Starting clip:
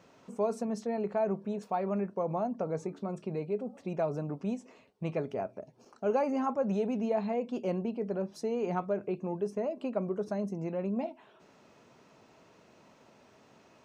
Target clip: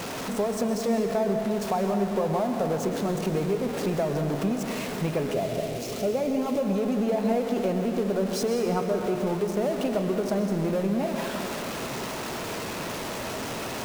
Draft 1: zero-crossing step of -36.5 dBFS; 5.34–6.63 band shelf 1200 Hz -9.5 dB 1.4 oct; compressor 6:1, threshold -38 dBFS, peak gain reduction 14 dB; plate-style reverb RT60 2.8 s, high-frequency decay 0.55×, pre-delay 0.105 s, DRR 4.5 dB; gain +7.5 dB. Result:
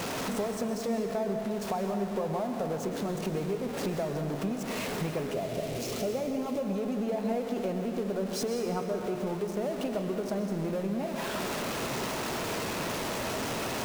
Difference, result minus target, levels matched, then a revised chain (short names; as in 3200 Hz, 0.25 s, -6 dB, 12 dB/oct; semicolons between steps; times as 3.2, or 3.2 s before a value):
compressor: peak gain reduction +6 dB
zero-crossing step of -36.5 dBFS; 5.34–6.63 band shelf 1200 Hz -9.5 dB 1.4 oct; compressor 6:1, threshold -31 dBFS, peak gain reduction 8 dB; plate-style reverb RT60 2.8 s, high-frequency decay 0.55×, pre-delay 0.105 s, DRR 4.5 dB; gain +7.5 dB